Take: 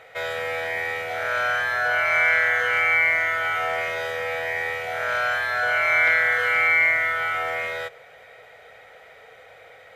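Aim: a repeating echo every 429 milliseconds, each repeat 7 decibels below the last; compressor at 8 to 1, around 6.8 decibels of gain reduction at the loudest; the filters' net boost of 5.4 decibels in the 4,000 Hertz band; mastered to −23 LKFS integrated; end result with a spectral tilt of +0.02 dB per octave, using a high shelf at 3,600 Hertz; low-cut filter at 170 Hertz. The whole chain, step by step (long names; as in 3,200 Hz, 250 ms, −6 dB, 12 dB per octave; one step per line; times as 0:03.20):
high-pass filter 170 Hz
high-shelf EQ 3,600 Hz +5.5 dB
parametric band 4,000 Hz +4 dB
downward compressor 8 to 1, threshold −20 dBFS
repeating echo 429 ms, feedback 45%, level −7 dB
level −1 dB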